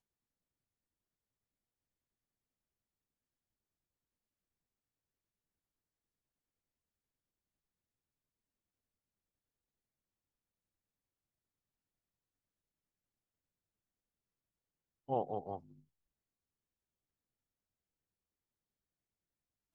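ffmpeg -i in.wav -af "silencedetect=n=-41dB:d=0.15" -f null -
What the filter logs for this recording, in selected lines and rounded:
silence_start: 0.00
silence_end: 15.09 | silence_duration: 15.09
silence_start: 15.57
silence_end: 19.75 | silence_duration: 4.17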